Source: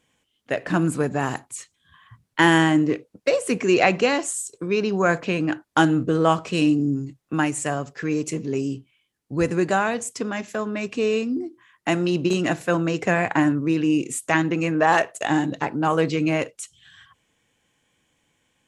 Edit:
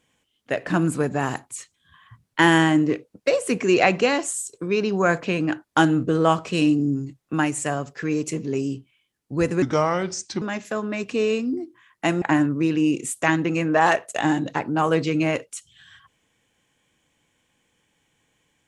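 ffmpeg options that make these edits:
-filter_complex "[0:a]asplit=4[s0][s1][s2][s3];[s0]atrim=end=9.624[s4];[s1]atrim=start=9.62:end=10.25,asetpts=PTS-STARTPTS,asetrate=34839,aresample=44100,atrim=end_sample=35168,asetpts=PTS-STARTPTS[s5];[s2]atrim=start=10.246:end=12.052[s6];[s3]atrim=start=13.278[s7];[s4][s5]acrossfade=d=0.004:c1=hsin:c2=hsin[s8];[s8][s6]acrossfade=d=0.004:c1=hsin:c2=hsin[s9];[s9][s7]acrossfade=d=0.004:c1=hsin:c2=hsin"

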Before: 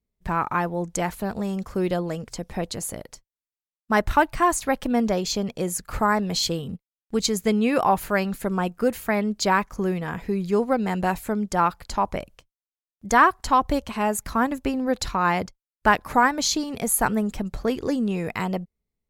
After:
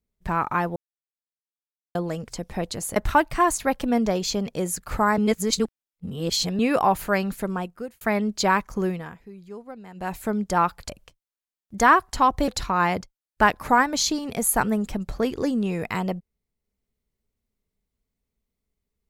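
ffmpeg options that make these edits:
-filter_complex "[0:a]asplit=11[s0][s1][s2][s3][s4][s5][s6][s7][s8][s9][s10];[s0]atrim=end=0.76,asetpts=PTS-STARTPTS,afade=t=out:st=0.756:d=0.004:c=hsin[s11];[s1]atrim=start=0.76:end=1.95,asetpts=PTS-STARTPTS,volume=0[s12];[s2]atrim=start=1.95:end=2.962,asetpts=PTS-STARTPTS,afade=t=in:d=0.004:c=hsin[s13];[s3]atrim=start=3.978:end=6.202[s14];[s4]atrim=start=6.198:end=7.612,asetpts=PTS-STARTPTS,areverse[s15];[s5]atrim=start=7.608:end=9.03,asetpts=PTS-STARTPTS,afade=t=out:st=0.742:d=0.68[s16];[s6]atrim=start=9.03:end=10.2,asetpts=PTS-STARTPTS,afade=t=in:d=0.004:c=hsin,afade=t=out:st=0.84:d=0.33:silence=0.133352[s17];[s7]atrim=start=10.2:end=10.96,asetpts=PTS-STARTPTS,volume=0.133[s18];[s8]atrim=start=10.96:end=11.912,asetpts=PTS-STARTPTS,afade=t=in:d=0.33:silence=0.133352[s19];[s9]atrim=start=12.198:end=13.792[s20];[s10]atrim=start=14.928[s21];[s11][s12][s13]concat=n=3:v=0:a=1[s22];[s22][s14]acrossfade=d=0.004:c1=hsin:c2=hsin[s23];[s23][s15]acrossfade=d=0.004:c1=hsin:c2=hsin[s24];[s16][s17][s18][s19]concat=n=4:v=0:a=1[s25];[s24][s25]acrossfade=d=0.004:c1=hsin:c2=hsin[s26];[s26][s20]acrossfade=d=0.004:c1=hsin:c2=hsin[s27];[s27][s21]acrossfade=d=0.004:c1=hsin:c2=hsin"

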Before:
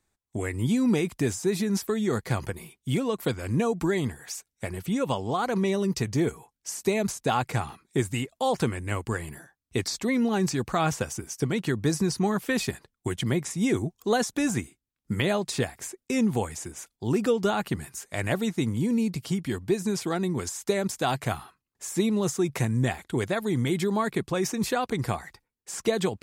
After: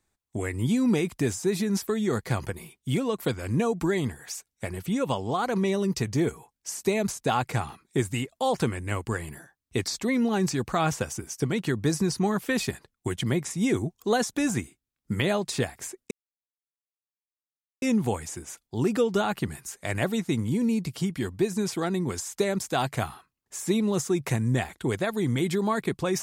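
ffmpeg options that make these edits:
-filter_complex "[0:a]asplit=2[s0][s1];[s0]atrim=end=16.11,asetpts=PTS-STARTPTS,afade=t=out:st=16.106:d=0.004:c=hsin,apad=pad_dur=1.71[s2];[s1]atrim=start=16.11,asetpts=PTS-STARTPTS,afade=t=in:d=0.004:c=hsin[s3];[s2][s3]concat=n=2:v=0:a=1"

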